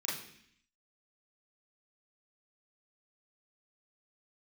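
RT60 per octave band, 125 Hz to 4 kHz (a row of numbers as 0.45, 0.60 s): 0.85, 0.85, 0.65, 0.65, 0.85, 0.80 s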